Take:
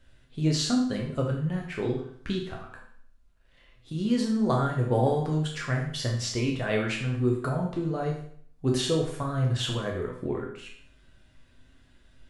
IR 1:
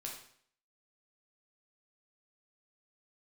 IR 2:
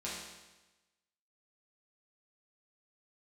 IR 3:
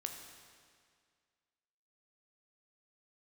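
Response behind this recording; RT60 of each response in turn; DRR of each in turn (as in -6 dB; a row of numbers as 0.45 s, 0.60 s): 1; 0.60 s, 1.1 s, 2.0 s; -1.5 dB, -7.5 dB, 3.5 dB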